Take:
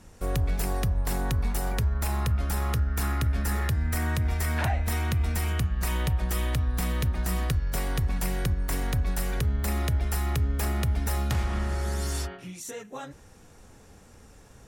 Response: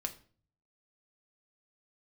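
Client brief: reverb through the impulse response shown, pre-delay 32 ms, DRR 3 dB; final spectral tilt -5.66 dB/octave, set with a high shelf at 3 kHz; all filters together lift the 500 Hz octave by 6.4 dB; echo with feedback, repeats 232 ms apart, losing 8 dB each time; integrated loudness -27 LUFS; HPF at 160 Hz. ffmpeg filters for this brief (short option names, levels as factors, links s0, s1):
-filter_complex "[0:a]highpass=160,equalizer=f=500:t=o:g=8.5,highshelf=f=3000:g=-7,aecho=1:1:232|464|696|928|1160:0.398|0.159|0.0637|0.0255|0.0102,asplit=2[s0][s1];[1:a]atrim=start_sample=2205,adelay=32[s2];[s1][s2]afir=irnorm=-1:irlink=0,volume=0.708[s3];[s0][s3]amix=inputs=2:normalize=0,volume=1.5"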